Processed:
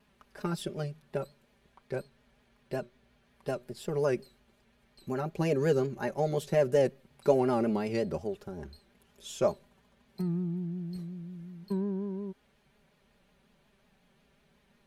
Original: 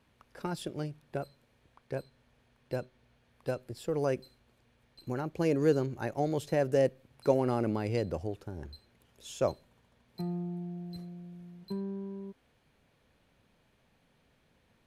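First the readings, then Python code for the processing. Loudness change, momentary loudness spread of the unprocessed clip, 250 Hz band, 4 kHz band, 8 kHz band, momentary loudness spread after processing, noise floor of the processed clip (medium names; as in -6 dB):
+1.5 dB, 18 LU, +1.5 dB, +1.5 dB, +2.0 dB, 17 LU, -68 dBFS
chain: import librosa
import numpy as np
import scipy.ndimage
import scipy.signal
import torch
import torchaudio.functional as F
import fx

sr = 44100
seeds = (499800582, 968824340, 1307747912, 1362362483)

y = x + 0.76 * np.pad(x, (int(5.0 * sr / 1000.0), 0))[:len(x)]
y = fx.vibrato(y, sr, rate_hz=5.5, depth_cents=74.0)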